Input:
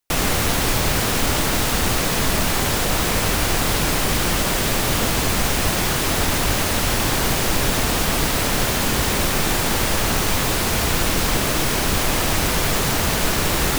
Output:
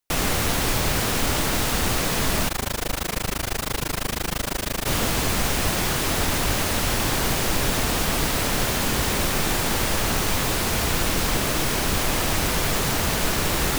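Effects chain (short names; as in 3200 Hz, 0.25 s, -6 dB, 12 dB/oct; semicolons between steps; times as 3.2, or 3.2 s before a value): 2.48–4.86 AM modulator 26 Hz, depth 100%; gain -3 dB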